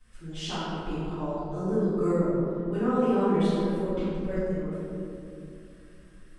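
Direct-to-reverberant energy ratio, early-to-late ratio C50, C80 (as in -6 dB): -16.0 dB, -5.0 dB, -2.0 dB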